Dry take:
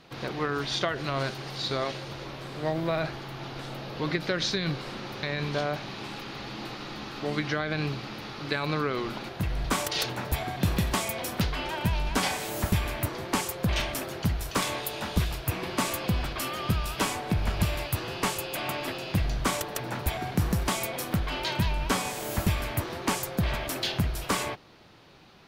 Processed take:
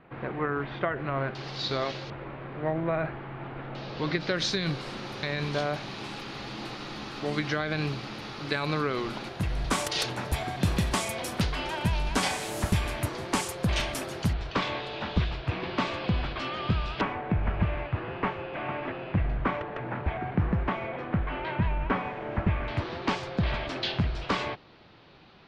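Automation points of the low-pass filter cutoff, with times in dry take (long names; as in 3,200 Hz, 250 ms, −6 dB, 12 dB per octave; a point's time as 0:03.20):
low-pass filter 24 dB per octave
2,200 Hz
from 0:01.35 5,900 Hz
from 0:02.10 2,300 Hz
from 0:03.75 5,900 Hz
from 0:04.37 11,000 Hz
from 0:14.33 4,100 Hz
from 0:17.01 2,300 Hz
from 0:22.68 4,500 Hz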